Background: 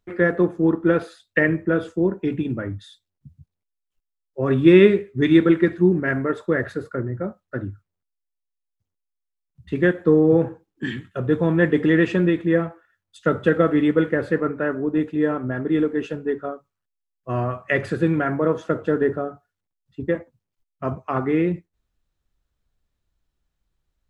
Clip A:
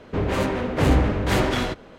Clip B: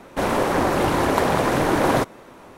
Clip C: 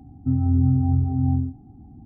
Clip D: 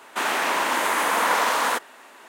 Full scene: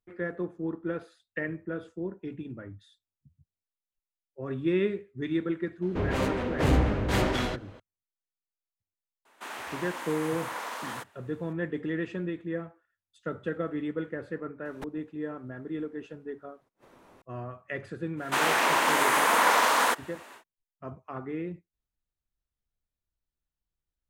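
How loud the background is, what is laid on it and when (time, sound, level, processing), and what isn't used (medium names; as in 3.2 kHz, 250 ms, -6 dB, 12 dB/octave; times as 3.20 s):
background -14.5 dB
5.82 s: add A -5 dB
9.25 s: add D -15.5 dB
14.65 s: add B -12 dB + inverted gate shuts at -15 dBFS, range -41 dB
18.16 s: add D -1 dB, fades 0.10 s
not used: C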